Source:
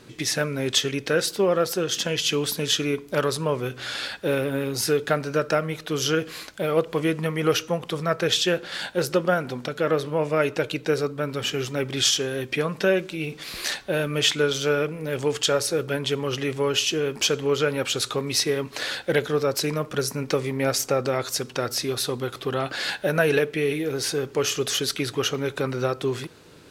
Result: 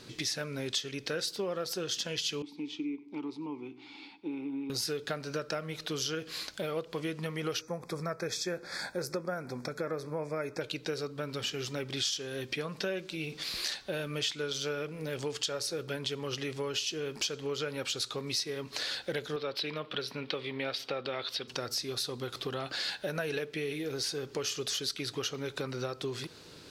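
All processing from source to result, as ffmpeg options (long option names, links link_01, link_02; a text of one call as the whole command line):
ffmpeg -i in.wav -filter_complex "[0:a]asettb=1/sr,asplit=3[link_01][link_02][link_03];[link_01]atrim=end=2.424[link_04];[link_02]atrim=start=2.42:end=4.7,asetpts=PTS-STARTPTS,afade=type=in:duration=0.004:curve=qsin,afade=type=out:start_time=2.276:duration=0.004:curve=qsin,asplit=3[link_05][link_06][link_07];[link_05]bandpass=frequency=300:width_type=q:width=8,volume=0dB[link_08];[link_06]bandpass=frequency=870:width_type=q:width=8,volume=-6dB[link_09];[link_07]bandpass=frequency=2240:width_type=q:width=8,volume=-9dB[link_10];[link_08][link_09][link_10]amix=inputs=3:normalize=0,equalizer=frequency=290:width_type=o:width=1.6:gain=4.5,aecho=1:1:95:0.0841,atrim=end_sample=100548[link_11];[link_03]atrim=start=4.696[link_12];[link_04][link_11]acrossfade=duration=0.004:curve1=hsin:curve2=qsin[link_13];[link_13][link_12]acrossfade=duration=0.004:curve1=qsin:curve2=hsin,asettb=1/sr,asplit=3[link_14][link_15][link_16];[link_14]atrim=end=7.614[link_17];[link_15]atrim=start=7.61:end=10.61,asetpts=PTS-STARTPTS,afade=type=in:duration=0.004:curve=qsin,afade=type=out:start_time=2.996:duration=0.004:curve=qsin,asuperstop=centerf=2900:order=12:qfactor=4.1,equalizer=frequency=3600:width=2.4:gain=-14.5[link_18];[link_16]atrim=start=10.606[link_19];[link_17][link_18]acrossfade=duration=0.004:curve1=hsin:curve2=qsin[link_20];[link_20][link_19]acrossfade=duration=0.004:curve1=qsin:curve2=hsin,asettb=1/sr,asplit=3[link_21][link_22][link_23];[link_21]atrim=end=19.364[link_24];[link_22]atrim=start=19.36:end=21.48,asetpts=PTS-STARTPTS,afade=type=in:duration=0.004:curve=qsin,afade=type=out:start_time=2.116:duration=0.004:curve=qsin,highpass=frequency=250:poles=1,highshelf=frequency=4900:width_type=q:width=3:gain=-13[link_25];[link_23]atrim=start=21.476[link_26];[link_24][link_25]acrossfade=duration=0.004:curve1=hsin:curve2=qsin[link_27];[link_27][link_26]acrossfade=duration=0.004:curve1=qsin:curve2=hsin,equalizer=frequency=4600:width=1.3:gain=8.5,acompressor=threshold=-31dB:ratio=3,volume=-3.5dB" out.wav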